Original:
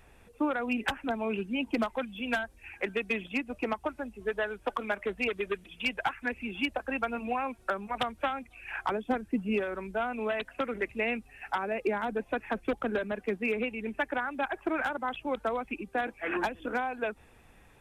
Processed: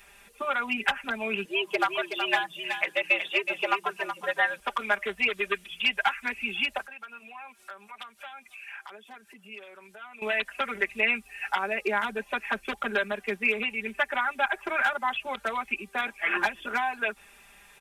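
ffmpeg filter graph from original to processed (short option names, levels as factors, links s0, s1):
-filter_complex "[0:a]asettb=1/sr,asplit=3[s0][s1][s2];[s0]atrim=end=1.454[s3];[s1]atrim=start=1.45:end=4.6,asetpts=PTS-STARTPTS,afade=t=in:d=0.004:c=qsin,afade=t=out:st=3.146:d=0.004:c=qsin,afreqshift=120,aecho=1:1:373:0.376,atrim=end_sample=138915[s4];[s2]atrim=start=4.596[s5];[s3][s4]acrossfade=d=0.004:c1=hsin:c2=qsin[s6];[s6][s5]acrossfade=d=0.004:c1=qsin:c2=hsin,asettb=1/sr,asplit=3[s7][s8][s9];[s7]atrim=end=6.864[s10];[s8]atrim=start=6.86:end=10.22,asetpts=PTS-STARTPTS,afade=t=in:d=0.004:c=qsin,afade=t=out:st=3.356:d=0.004:c=qsin,highpass=f=400:p=1,acompressor=threshold=0.00224:ratio=2.5:attack=3.2:release=140:knee=1:detection=peak[s11];[s9]atrim=start=10.216[s12];[s10][s11]acrossfade=d=0.004:c1=hsin:c2=qsin[s13];[s13][s12]acrossfade=d=0.004:c1=qsin:c2=hsin,tiltshelf=f=830:g=-9.5,acrossover=split=3000[s14][s15];[s15]acompressor=threshold=0.0112:ratio=4:attack=1:release=60[s16];[s14][s16]amix=inputs=2:normalize=0,aecho=1:1:5:0.95"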